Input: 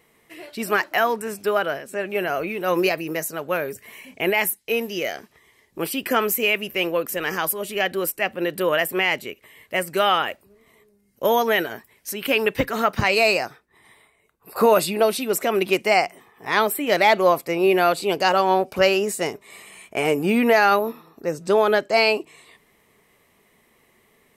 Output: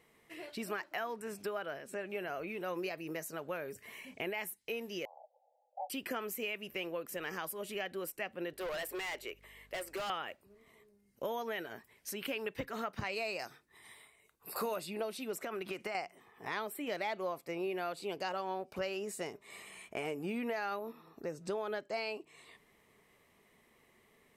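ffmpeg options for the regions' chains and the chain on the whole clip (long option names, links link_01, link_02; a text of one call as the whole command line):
ffmpeg -i in.wav -filter_complex "[0:a]asettb=1/sr,asplit=3[link_01][link_02][link_03];[link_01]atrim=end=5.054[link_04];[link_02]atrim=start=5.05:end=5.9,asetpts=PTS-STARTPTS,afade=type=in:duration=0.004:curve=qsin,afade=type=out:start_time=0.846:duration=0.004:curve=qsin,aeval=exprs='val(0)*sin(2*PI*410*n/s)':channel_layout=same,asuperpass=centerf=650:order=12:qfactor=1.8,acontrast=37[link_05];[link_03]atrim=start=5.896[link_06];[link_04][link_05]acrossfade=duration=0.004:curve1=hsin:curve2=qsin[link_07];[link_07][link_06]acrossfade=duration=0.004:curve1=qsin:curve2=hsin,asettb=1/sr,asplit=3[link_08][link_09][link_10];[link_08]atrim=end=8.534[link_11];[link_09]atrim=start=8.53:end=10.1,asetpts=PTS-STARTPTS,afade=type=in:duration=0.004:curve=qsin,afade=type=out:start_time=1.566:duration=0.004:curve=qsin,highpass=frequency=350:width=0.5412,highpass=frequency=350:width=1.3066,volume=24.5dB,asoftclip=hard,volume=-24.5dB,aeval=exprs='val(0)+0.00141*(sin(2*PI*50*n/s)+sin(2*PI*2*50*n/s)/2+sin(2*PI*3*50*n/s)/3+sin(2*PI*4*50*n/s)/4+sin(2*PI*5*50*n/s)/5)':channel_layout=same[link_12];[link_10]atrim=start=10.096[link_13];[link_11][link_12]acrossfade=duration=0.004:curve1=hsin:curve2=qsin[link_14];[link_14][link_13]acrossfade=duration=0.004:curve1=qsin:curve2=hsin,asettb=1/sr,asplit=3[link_15][link_16][link_17];[link_15]atrim=end=13.394[link_18];[link_16]atrim=start=13.39:end=14.76,asetpts=PTS-STARTPTS,afade=type=in:duration=0.004:curve=qsin,afade=type=out:start_time=1.366:duration=0.004:curve=qsin,highshelf=frequency=2900:gain=11,bandreject=frequency=50:width_type=h:width=6,bandreject=frequency=100:width_type=h:width=6,bandreject=frequency=150:width_type=h:width=6,bandreject=frequency=200:width_type=h:width=6,bandreject=frequency=250:width_type=h:width=6,bandreject=frequency=300:width_type=h:width=6,bandreject=frequency=350:width_type=h:width=6[link_19];[link_17]atrim=start=14.756[link_20];[link_18][link_19]acrossfade=duration=0.004:curve1=hsin:curve2=qsin[link_21];[link_21][link_20]acrossfade=duration=0.004:curve1=qsin:curve2=hsin,asettb=1/sr,asplit=3[link_22][link_23][link_24];[link_22]atrim=end=15.424[link_25];[link_23]atrim=start=15.42:end=15.95,asetpts=PTS-STARTPTS,afade=type=in:duration=0.004:curve=qsin,afade=type=out:start_time=0.526:duration=0.004:curve=qsin,equalizer=frequency=1400:width_type=o:width=0.72:gain=7.5,acompressor=threshold=-21dB:ratio=6:attack=3.2:release=140:knee=1:detection=peak[link_26];[link_24]atrim=start=15.946[link_27];[link_25][link_26]acrossfade=duration=0.004:curve1=hsin:curve2=qsin[link_28];[link_28][link_27]acrossfade=duration=0.004:curve1=qsin:curve2=hsin,highshelf=frequency=11000:gain=-7,acompressor=threshold=-32dB:ratio=3,volume=-7dB" out.wav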